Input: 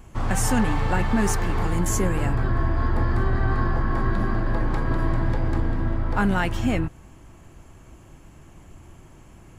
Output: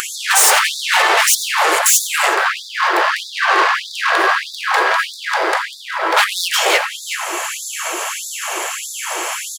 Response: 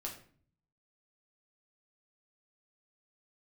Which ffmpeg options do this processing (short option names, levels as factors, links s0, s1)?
-filter_complex "[0:a]highpass=45,aeval=exprs='0.1*(abs(mod(val(0)/0.1+3,4)-2)-1)':c=same,tiltshelf=f=770:g=-5.5,asoftclip=type=tanh:threshold=0.0376,asplit=2[s0][s1];[s1]adelay=370,highpass=300,lowpass=3400,asoftclip=type=hard:threshold=0.015,volume=0.316[s2];[s0][s2]amix=inputs=2:normalize=0,acompressor=mode=upward:threshold=0.0158:ratio=2.5,asplit=2[s3][s4];[1:a]atrim=start_sample=2205,adelay=87[s5];[s4][s5]afir=irnorm=-1:irlink=0,volume=0.237[s6];[s3][s6]amix=inputs=2:normalize=0,acompressor=threshold=0.0126:ratio=2,alimiter=level_in=18.8:limit=0.891:release=50:level=0:latency=1,afftfilt=real='re*gte(b*sr/1024,320*pow(3500/320,0.5+0.5*sin(2*PI*1.6*pts/sr)))':imag='im*gte(b*sr/1024,320*pow(3500/320,0.5+0.5*sin(2*PI*1.6*pts/sr)))':win_size=1024:overlap=0.75"